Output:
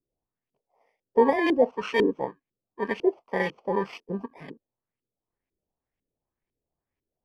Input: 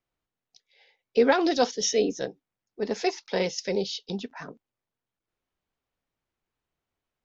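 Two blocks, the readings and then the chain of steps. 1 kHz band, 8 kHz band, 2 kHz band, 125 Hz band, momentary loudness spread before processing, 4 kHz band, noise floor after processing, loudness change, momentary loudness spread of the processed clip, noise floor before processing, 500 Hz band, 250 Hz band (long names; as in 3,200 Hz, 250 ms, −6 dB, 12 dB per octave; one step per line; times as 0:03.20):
+2.0 dB, can't be measured, +2.0 dB, 0.0 dB, 14 LU, −9.0 dB, below −85 dBFS, +0.5 dB, 14 LU, below −85 dBFS, +0.5 dB, +1.0 dB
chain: samples in bit-reversed order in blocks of 32 samples
auto-filter low-pass saw up 2 Hz 330–2,800 Hz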